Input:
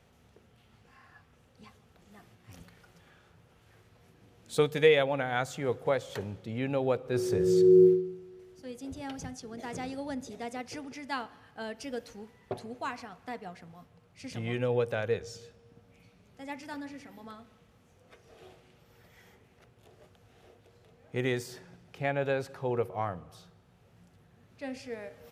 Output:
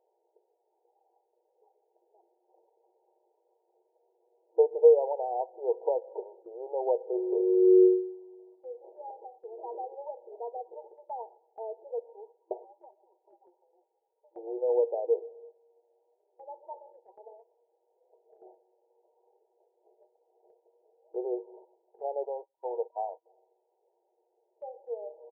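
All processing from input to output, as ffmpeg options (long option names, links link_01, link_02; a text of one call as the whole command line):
ffmpeg -i in.wav -filter_complex "[0:a]asettb=1/sr,asplit=3[link_01][link_02][link_03];[link_01]atrim=end=12.644[link_04];[link_02]atrim=start=12.64:end=14.36,asetpts=PTS-STARTPTS,afade=type=in:duration=0.004:curve=qsin,afade=type=out:start_time=1.716:duration=0.004:curve=qsin,lowshelf=frequency=400:gain=-11.5,acompressor=threshold=-48dB:ratio=2.5:attack=3.2:release=140:knee=1:detection=peak,aeval=exprs='val(0)*sin(2*PI*340*n/s)':channel_layout=same[link_05];[link_03]atrim=start=14.356[link_06];[link_04][link_05]acrossfade=duration=0.004:curve1=hsin:curve2=qsin[link_07];[link_07][link_06]acrossfade=duration=0.004:curve1=qsin:curve2=hsin,asettb=1/sr,asplit=3[link_08][link_09][link_10];[link_08]atrim=end=22.254[link_11];[link_09]atrim=start=22.25:end=23.26,asetpts=PTS-STARTPTS,afade=type=in:duration=0.004:curve=qsin,afade=type=out:start_time=1.006:duration=0.004:curve=qsin,agate=range=-30dB:threshold=-40dB:ratio=16:release=100:detection=peak,equalizer=frequency=340:width_type=o:width=0.79:gain=-12[link_12];[link_10]atrim=start=23.256[link_13];[link_11][link_12]acrossfade=duration=0.004:curve1=hsin:curve2=qsin[link_14];[link_14][link_13]acrossfade=duration=0.004:curve1=qsin:curve2=hsin,afftfilt=real='re*between(b*sr/4096,340,960)':imag='im*between(b*sr/4096,340,960)':win_size=4096:overlap=0.75,agate=range=-7dB:threshold=-55dB:ratio=16:detection=peak,aecho=1:1:6.4:0.36,volume=1.5dB" out.wav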